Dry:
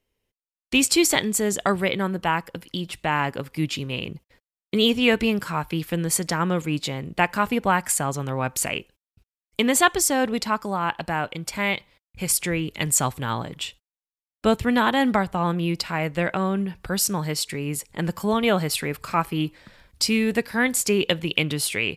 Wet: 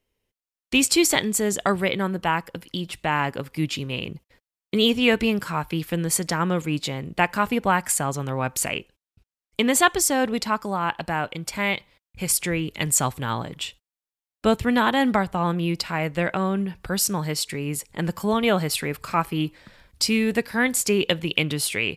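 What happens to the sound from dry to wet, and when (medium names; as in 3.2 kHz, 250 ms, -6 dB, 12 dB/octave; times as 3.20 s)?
8.74–9.68 s: treble shelf 11 kHz -7 dB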